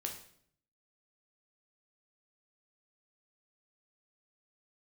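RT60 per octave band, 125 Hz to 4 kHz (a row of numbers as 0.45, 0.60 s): 0.95, 0.80, 0.65, 0.55, 0.55, 0.55 s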